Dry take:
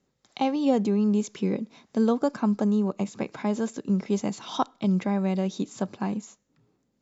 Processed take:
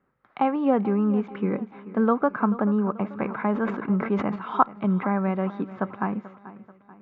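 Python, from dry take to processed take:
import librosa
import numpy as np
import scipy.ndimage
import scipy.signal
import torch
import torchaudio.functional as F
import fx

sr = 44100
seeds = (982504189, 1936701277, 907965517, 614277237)

p1 = scipy.signal.sosfilt(scipy.signal.butter(4, 2300.0, 'lowpass', fs=sr, output='sos'), x)
p2 = fx.peak_eq(p1, sr, hz=1300.0, db=12.0, octaves=1.0)
p3 = p2 + fx.echo_feedback(p2, sr, ms=436, feedback_pct=46, wet_db=-16.5, dry=0)
y = fx.sustainer(p3, sr, db_per_s=73.0, at=(3.22, 4.36))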